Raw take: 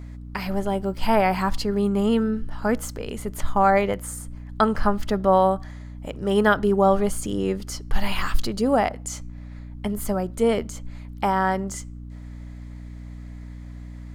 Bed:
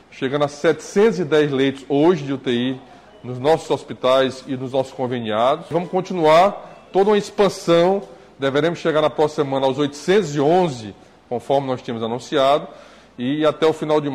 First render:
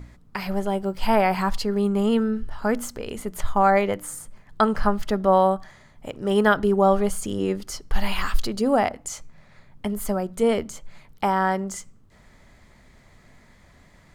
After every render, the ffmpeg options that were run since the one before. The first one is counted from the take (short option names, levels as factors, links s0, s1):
-af "bandreject=f=60:t=h:w=4,bandreject=f=120:t=h:w=4,bandreject=f=180:t=h:w=4,bandreject=f=240:t=h:w=4,bandreject=f=300:t=h:w=4"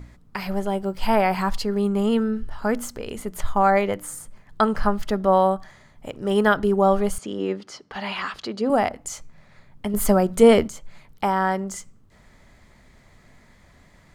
-filter_complex "[0:a]asettb=1/sr,asplit=3[s0][s1][s2];[s0]atrim=end=7.184[s3];[s1]atrim=start=7.18:end=8.7,asetpts=PTS-STARTPTS,afade=t=in:d=0.004:c=qsin,afade=t=out:st=1.516:d=0.004:c=qsin,highpass=210,lowpass=4400[s4];[s2]atrim=start=8.696[s5];[s3][s4]acrossfade=d=0.004:c1=hsin:c2=qsin[s6];[s6][s5]acrossfade=d=0.004:c1=qsin:c2=hsin,asplit=3[s7][s8][s9];[s7]atrim=end=9.942[s10];[s8]atrim=start=9.938:end=10.682,asetpts=PTS-STARTPTS,volume=2.37[s11];[s9]atrim=start=10.678[s12];[s10][s11]acrossfade=d=0.004:c1=hsin:c2=hsin[s13];[s13][s12]acrossfade=d=0.004:c1=hsin:c2=hsin"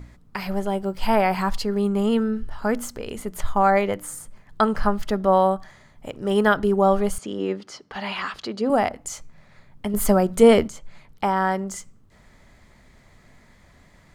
-filter_complex "[0:a]asettb=1/sr,asplit=3[s0][s1][s2];[s0]atrim=end=10.694[s3];[s1]atrim=start=10.69:end=11.37,asetpts=PTS-STARTPTS,afade=t=in:d=0.004:c=qsin,afade=t=out:st=0.676:d=0.004:c=qsin,highshelf=f=11000:g=-8[s4];[s2]atrim=start=11.366[s5];[s3][s4]acrossfade=d=0.004:c1=hsin:c2=qsin[s6];[s6][s5]acrossfade=d=0.004:c1=qsin:c2=hsin"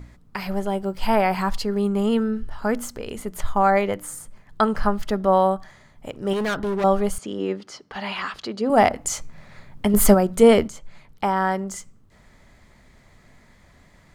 -filter_complex "[0:a]asettb=1/sr,asplit=3[s0][s1][s2];[s0]atrim=end=6.334[s3];[s1]atrim=start=6.33:end=6.84,asetpts=PTS-STARTPTS,afade=t=in:d=0.004:c=qsin,afade=t=out:st=0.506:d=0.004:c=qsin,asoftclip=type=hard:threshold=0.0841[s4];[s2]atrim=start=6.836[s5];[s3][s4]acrossfade=d=0.004:c1=hsin:c2=qsin[s6];[s6][s5]acrossfade=d=0.004:c1=qsin:c2=hsin,asplit=3[s7][s8][s9];[s7]afade=t=out:st=8.76:d=0.02[s10];[s8]acontrast=75,afade=t=in:st=8.76:d=0.02,afade=t=out:st=10.13:d=0.02[s11];[s9]afade=t=in:st=10.13:d=0.02[s12];[s10][s11][s12]amix=inputs=3:normalize=0"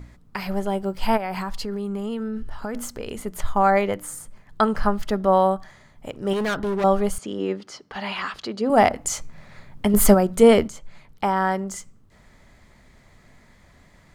-filter_complex "[0:a]asplit=3[s0][s1][s2];[s0]afade=t=out:st=1.16:d=0.02[s3];[s1]acompressor=threshold=0.0631:ratio=10:attack=3.2:release=140:knee=1:detection=peak,afade=t=in:st=1.16:d=0.02,afade=t=out:st=2.74:d=0.02[s4];[s2]afade=t=in:st=2.74:d=0.02[s5];[s3][s4][s5]amix=inputs=3:normalize=0"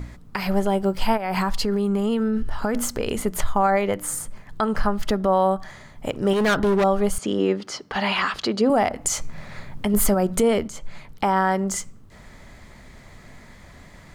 -filter_complex "[0:a]asplit=2[s0][s1];[s1]acompressor=threshold=0.0447:ratio=6,volume=1.41[s2];[s0][s2]amix=inputs=2:normalize=0,alimiter=limit=0.316:level=0:latency=1:release=217"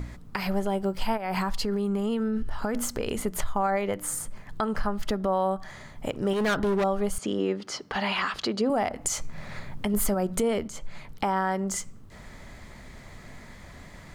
-af "acompressor=threshold=0.0224:ratio=1.5"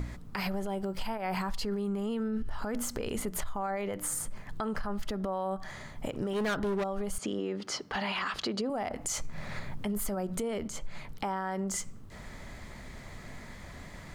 -af "alimiter=limit=0.0841:level=0:latency=1:release=28,acompressor=threshold=0.0355:ratio=6"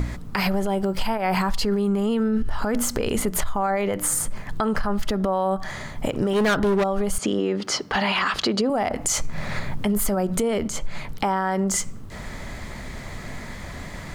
-af "volume=3.35"